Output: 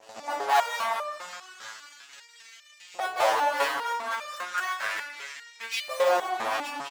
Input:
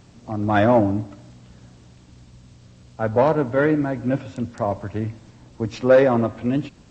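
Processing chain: tracing distortion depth 0.11 ms; 5.74–6.38 s: tilt EQ -2.5 dB/octave; delay 204 ms -13 dB; dynamic bell 280 Hz, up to -4 dB, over -24 dBFS, Q 0.79; 0.63–1.04 s: comb 1.6 ms, depth 55%; in parallel at +2 dB: compression 5:1, threshold -27 dBFS, peak gain reduction 17.5 dB; on the sum: waveshaping leveller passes 3; overload inside the chain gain 20.5 dB; LFO high-pass saw up 0.34 Hz 650–2400 Hz; expander -37 dBFS; resonator arpeggio 5 Hz 110–600 Hz; trim +8 dB

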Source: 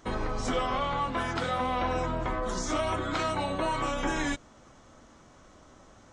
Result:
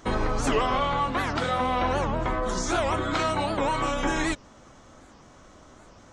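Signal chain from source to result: gain riding 2 s; warped record 78 rpm, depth 250 cents; trim +4 dB

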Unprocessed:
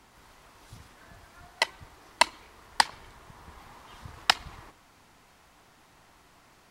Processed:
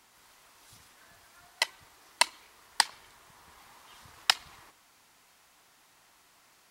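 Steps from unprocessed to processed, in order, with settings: tilt EQ +2.5 dB/octave; trim -5.5 dB

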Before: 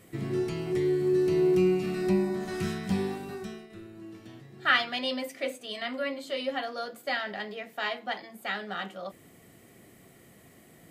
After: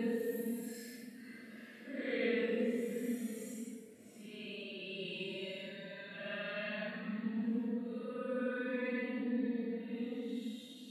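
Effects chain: Doppler pass-by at 3.35 s, 44 m/s, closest 4.3 m; reverse; upward compressor, threshold -57 dBFS; reverse; fifteen-band graphic EQ 250 Hz +9 dB, 1 kHz -7 dB, 6.3 kHz -11 dB; Paulstretch 9.3×, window 0.05 s, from 4.91 s; trim +18 dB

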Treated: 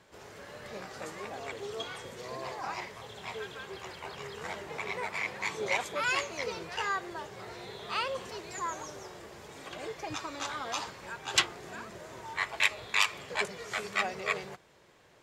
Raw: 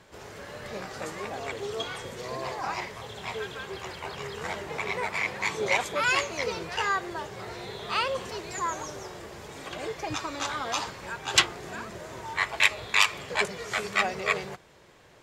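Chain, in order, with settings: bass shelf 94 Hz -5.5 dB; trim -5 dB

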